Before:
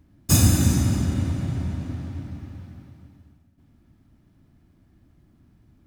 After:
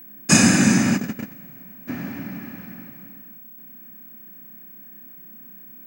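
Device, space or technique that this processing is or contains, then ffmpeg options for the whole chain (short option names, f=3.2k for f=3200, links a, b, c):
old television with a line whistle: -filter_complex "[0:a]asplit=3[a][b][c];[a]afade=t=out:st=0.96:d=0.02[d];[b]agate=range=-21dB:threshold=-20dB:ratio=16:detection=peak,afade=t=in:st=0.96:d=0.02,afade=t=out:st=1.87:d=0.02[e];[c]afade=t=in:st=1.87:d=0.02[f];[d][e][f]amix=inputs=3:normalize=0,highpass=f=180:w=0.5412,highpass=f=180:w=1.3066,equalizer=f=210:t=q:w=4:g=4,equalizer=f=310:t=q:w=4:g=-4,equalizer=f=1.7k:t=q:w=4:g=9,equalizer=f=2.4k:t=q:w=4:g=8,equalizer=f=3.6k:t=q:w=4:g=-8,lowpass=f=8k:w=0.5412,lowpass=f=8k:w=1.3066,aeval=exprs='val(0)+0.00398*sin(2*PI*15734*n/s)':c=same,volume=7.5dB"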